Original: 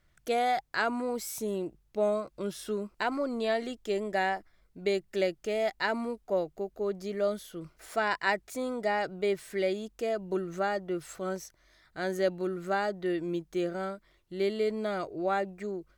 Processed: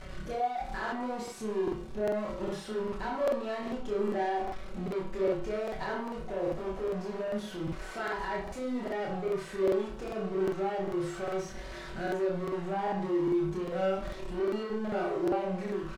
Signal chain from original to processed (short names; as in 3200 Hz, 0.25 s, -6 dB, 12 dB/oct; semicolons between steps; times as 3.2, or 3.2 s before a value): zero-crossing step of -30.5 dBFS; LPF 8500 Hz 12 dB/oct; high shelf 2600 Hz -11.5 dB; comb 5.3 ms, depth 54%; dynamic EQ 900 Hz, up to +5 dB, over -38 dBFS, Q 1.5; limiter -19.5 dBFS, peak gain reduction 9.5 dB; sample leveller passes 1; chorus voices 2, 0.17 Hz, delay 26 ms, depth 3 ms; flutter echo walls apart 5.4 m, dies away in 0.27 s; reverb RT60 0.35 s, pre-delay 31 ms, DRR 3.5 dB; crackling interface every 0.40 s, samples 2048, repeat, from 0.83; gain -7 dB